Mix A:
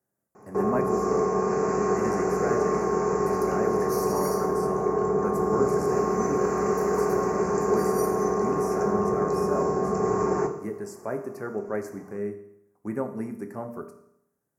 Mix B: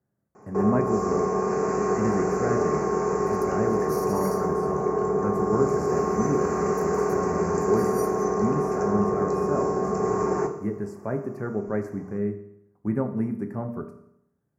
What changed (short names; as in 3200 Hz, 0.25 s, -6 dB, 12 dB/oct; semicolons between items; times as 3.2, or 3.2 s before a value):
speech: add tone controls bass +11 dB, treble -11 dB; second sound: send -11.5 dB